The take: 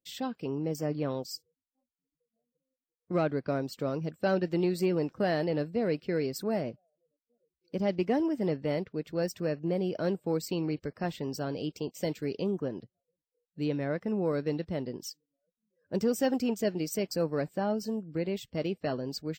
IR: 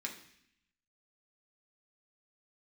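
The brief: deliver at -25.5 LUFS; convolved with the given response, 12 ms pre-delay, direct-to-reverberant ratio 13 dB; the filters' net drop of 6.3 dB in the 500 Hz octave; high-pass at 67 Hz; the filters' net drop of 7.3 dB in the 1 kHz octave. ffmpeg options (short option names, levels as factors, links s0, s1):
-filter_complex "[0:a]highpass=67,equalizer=f=500:t=o:g=-6,equalizer=f=1000:t=o:g=-8,asplit=2[s0][s1];[1:a]atrim=start_sample=2205,adelay=12[s2];[s1][s2]afir=irnorm=-1:irlink=0,volume=0.211[s3];[s0][s3]amix=inputs=2:normalize=0,volume=2.99"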